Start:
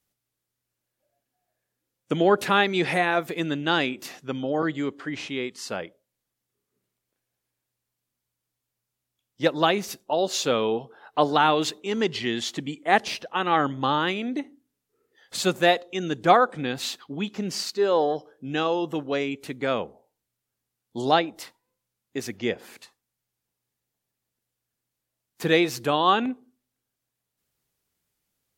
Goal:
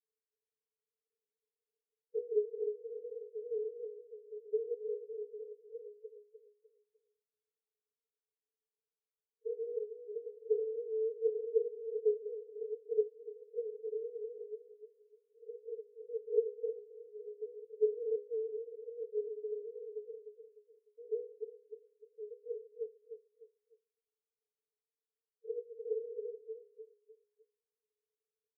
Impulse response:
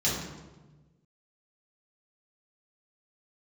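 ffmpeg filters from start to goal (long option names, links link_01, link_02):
-filter_complex "[0:a]asplit=2[link_01][link_02];[link_02]aeval=exprs='(mod(6.68*val(0)+1,2)-1)/6.68':channel_layout=same,volume=-4dB[link_03];[link_01][link_03]amix=inputs=2:normalize=0,aecho=1:1:7.2:0.63,aecho=1:1:301|602|903|1204:0.447|0.147|0.0486|0.0161,aeval=exprs='0.841*(cos(1*acos(clip(val(0)/0.841,-1,1)))-cos(1*PI/2))+0.00596*(cos(3*acos(clip(val(0)/0.841,-1,1)))-cos(3*PI/2))+0.266*(cos(6*acos(clip(val(0)/0.841,-1,1)))-cos(6*PI/2))+0.168*(cos(7*acos(clip(val(0)/0.841,-1,1)))-cos(7*PI/2))+0.211*(cos(8*acos(clip(val(0)/0.841,-1,1)))-cos(8*PI/2))':channel_layout=same,asuperpass=centerf=450:order=20:qfactor=6.5,volume=2.5dB"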